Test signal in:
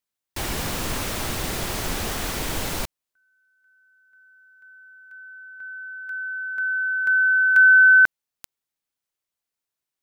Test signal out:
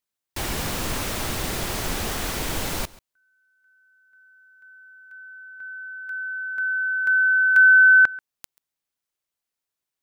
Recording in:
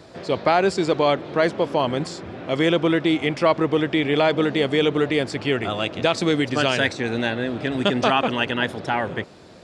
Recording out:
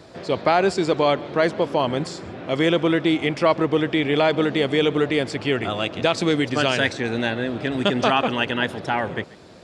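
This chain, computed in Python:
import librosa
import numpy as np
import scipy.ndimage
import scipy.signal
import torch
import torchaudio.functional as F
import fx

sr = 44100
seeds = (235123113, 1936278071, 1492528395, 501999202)

y = x + 10.0 ** (-21.5 / 20.0) * np.pad(x, (int(136 * sr / 1000.0), 0))[:len(x)]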